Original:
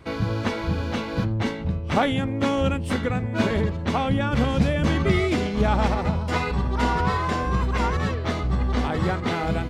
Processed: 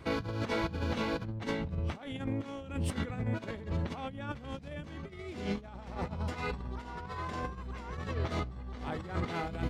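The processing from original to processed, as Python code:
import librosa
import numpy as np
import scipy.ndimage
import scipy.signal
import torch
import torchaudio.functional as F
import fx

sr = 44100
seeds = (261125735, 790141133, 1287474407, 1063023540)

y = fx.over_compress(x, sr, threshold_db=-28.0, ratio=-0.5)
y = y * 10.0 ** (-7.5 / 20.0)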